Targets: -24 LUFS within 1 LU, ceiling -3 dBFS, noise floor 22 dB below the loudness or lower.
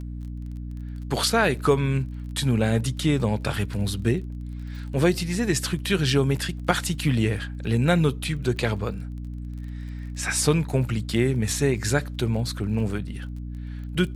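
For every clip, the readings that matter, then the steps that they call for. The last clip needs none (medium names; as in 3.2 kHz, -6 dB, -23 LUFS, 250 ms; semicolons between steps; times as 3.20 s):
tick rate 26 per s; hum 60 Hz; highest harmonic 300 Hz; hum level -31 dBFS; loudness -24.5 LUFS; peak level -4.5 dBFS; loudness target -24.0 LUFS
-> de-click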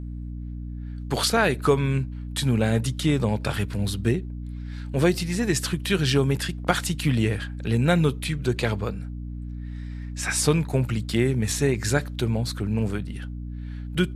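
tick rate 0 per s; hum 60 Hz; highest harmonic 300 Hz; hum level -31 dBFS
-> hum notches 60/120/180/240/300 Hz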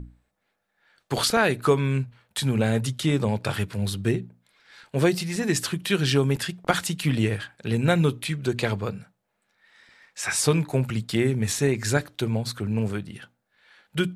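hum not found; loudness -25.0 LUFS; peak level -4.5 dBFS; loudness target -24.0 LUFS
-> trim +1 dB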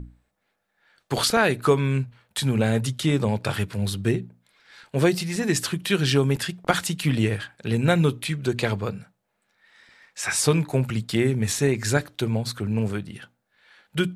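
loudness -24.0 LUFS; peak level -3.5 dBFS; noise floor -75 dBFS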